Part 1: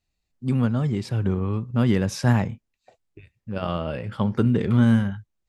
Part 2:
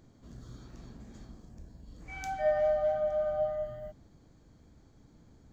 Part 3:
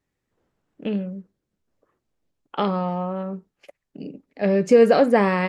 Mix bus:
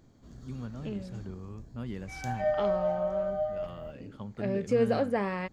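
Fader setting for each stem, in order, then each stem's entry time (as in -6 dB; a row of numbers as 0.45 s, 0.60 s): -18.0 dB, -0.5 dB, -12.0 dB; 0.00 s, 0.00 s, 0.00 s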